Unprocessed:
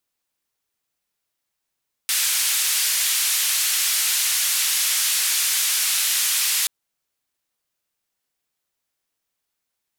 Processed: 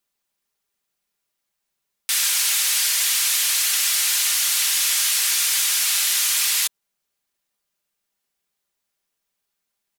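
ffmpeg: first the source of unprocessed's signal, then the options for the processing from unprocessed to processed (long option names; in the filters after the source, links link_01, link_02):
-f lavfi -i "anoisesrc=color=white:duration=4.58:sample_rate=44100:seed=1,highpass=frequency=2000,lowpass=frequency=13000,volume=-13.1dB"
-af "aecho=1:1:5:0.44"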